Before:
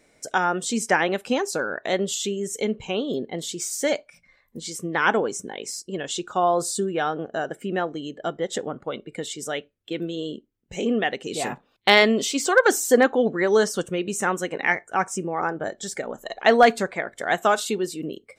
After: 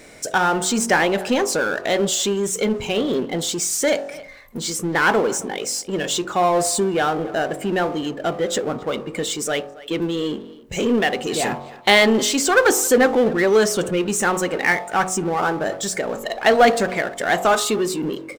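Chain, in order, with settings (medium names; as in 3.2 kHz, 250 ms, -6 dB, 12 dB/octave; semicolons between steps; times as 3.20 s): de-hum 46.41 Hz, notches 28; speakerphone echo 270 ms, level -26 dB; power-law waveshaper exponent 0.7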